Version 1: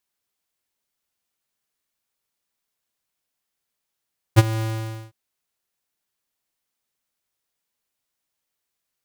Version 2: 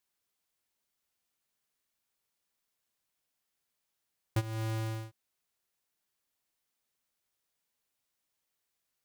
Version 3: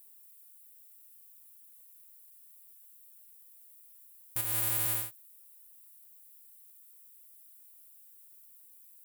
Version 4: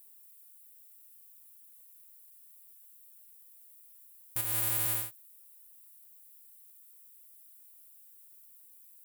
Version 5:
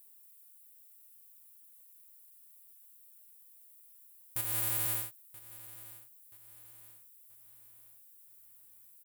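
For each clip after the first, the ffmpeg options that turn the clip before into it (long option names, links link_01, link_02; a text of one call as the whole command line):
ffmpeg -i in.wav -af "acompressor=threshold=-30dB:ratio=4,volume=-2.5dB" out.wav
ffmpeg -i in.wav -af "tiltshelf=frequency=870:gain=-8.5,alimiter=limit=-23dB:level=0:latency=1:release=26,aexciter=amount=8.6:drive=4.5:freq=8200" out.wav
ffmpeg -i in.wav -af anull out.wav
ffmpeg -i in.wav -af "aecho=1:1:979|1958|2937|3916:0.133|0.06|0.027|0.0122,volume=-2dB" out.wav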